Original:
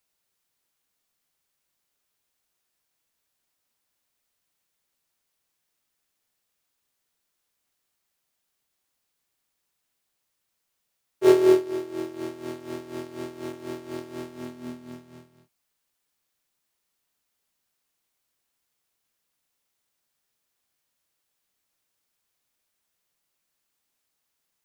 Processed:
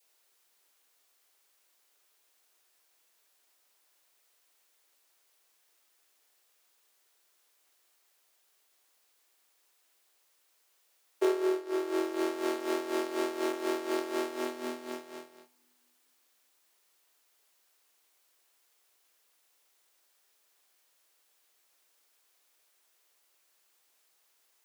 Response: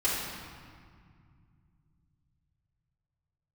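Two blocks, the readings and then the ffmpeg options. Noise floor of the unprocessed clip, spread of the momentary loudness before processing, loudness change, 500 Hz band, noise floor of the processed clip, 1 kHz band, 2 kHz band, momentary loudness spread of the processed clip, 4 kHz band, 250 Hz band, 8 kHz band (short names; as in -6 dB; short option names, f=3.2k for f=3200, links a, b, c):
-79 dBFS, 21 LU, -8.0 dB, -7.0 dB, -71 dBFS, +1.0 dB, +1.0 dB, 10 LU, 0.0 dB, -6.0 dB, +0.5 dB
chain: -filter_complex "[0:a]adynamicequalizer=threshold=0.00631:dfrequency=1300:dqfactor=1.7:tfrequency=1300:tqfactor=1.7:attack=5:release=100:ratio=0.375:range=2.5:mode=boostabove:tftype=bell,acompressor=threshold=-32dB:ratio=12,highpass=f=340:w=0.5412,highpass=f=340:w=1.3066,asplit=2[a][b];[1:a]atrim=start_sample=2205[c];[b][c]afir=irnorm=-1:irlink=0,volume=-33.5dB[d];[a][d]amix=inputs=2:normalize=0,volume=7.5dB"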